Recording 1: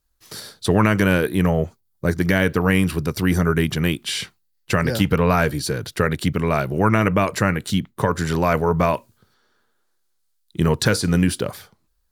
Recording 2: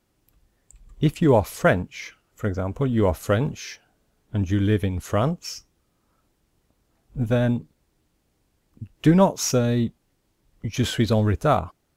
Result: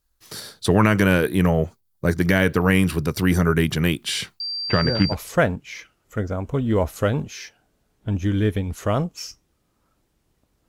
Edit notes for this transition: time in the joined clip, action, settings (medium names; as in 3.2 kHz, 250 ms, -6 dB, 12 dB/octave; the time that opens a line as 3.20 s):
recording 1
4.40–5.15 s: class-D stage that switches slowly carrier 4.7 kHz
5.12 s: go over to recording 2 from 1.39 s, crossfade 0.06 s